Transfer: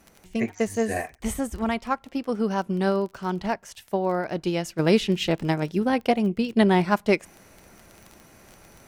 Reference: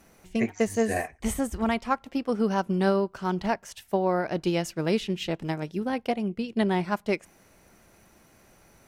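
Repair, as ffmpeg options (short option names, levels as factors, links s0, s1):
-af "adeclick=t=4,asetnsamples=n=441:p=0,asendcmd='4.79 volume volume -6dB',volume=1"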